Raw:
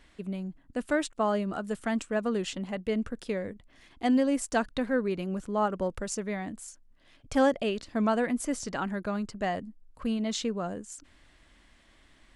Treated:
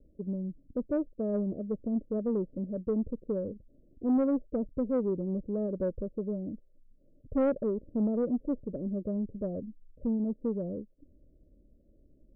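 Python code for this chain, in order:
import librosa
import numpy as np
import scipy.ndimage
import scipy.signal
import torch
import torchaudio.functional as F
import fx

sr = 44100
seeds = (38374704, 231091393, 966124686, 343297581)

y = scipy.signal.sosfilt(scipy.signal.butter(16, 600.0, 'lowpass', fs=sr, output='sos'), x)
y = 10.0 ** (-21.5 / 20.0) * np.tanh(y / 10.0 ** (-21.5 / 20.0))
y = F.gain(torch.from_numpy(y), 1.0).numpy()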